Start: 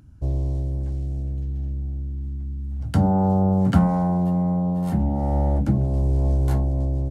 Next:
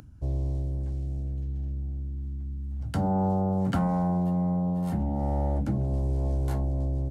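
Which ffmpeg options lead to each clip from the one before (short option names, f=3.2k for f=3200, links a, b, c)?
-filter_complex "[0:a]acrossover=split=300[a][b];[a]alimiter=limit=-17dB:level=0:latency=1[c];[c][b]amix=inputs=2:normalize=0,acompressor=mode=upward:threshold=-39dB:ratio=2.5,volume=-4.5dB"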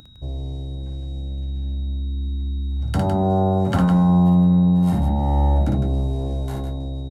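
-af "aecho=1:1:55.39|157.4:0.631|0.447,dynaudnorm=f=320:g=9:m=6dB,aeval=exprs='val(0)+0.00355*sin(2*PI*3800*n/s)':c=same"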